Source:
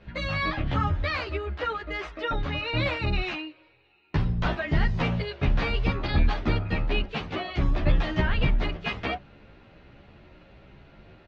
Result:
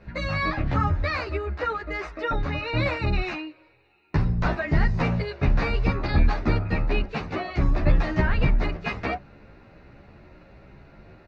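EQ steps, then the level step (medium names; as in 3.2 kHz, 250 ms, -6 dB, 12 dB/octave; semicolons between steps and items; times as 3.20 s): peaking EQ 3.2 kHz -14 dB 0.32 oct; +2.5 dB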